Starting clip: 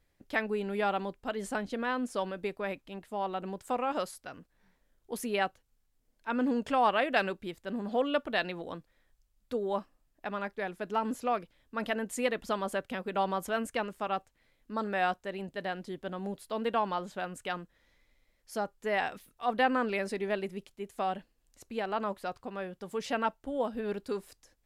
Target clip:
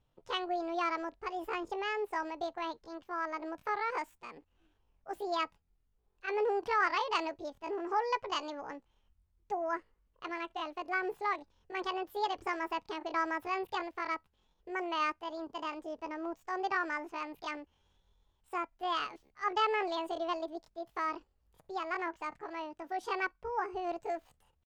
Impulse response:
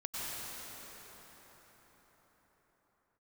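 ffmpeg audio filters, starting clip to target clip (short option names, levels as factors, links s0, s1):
-af "asetrate=74167,aresample=44100,atempo=0.594604,aemphasis=mode=reproduction:type=75kf,volume=0.841"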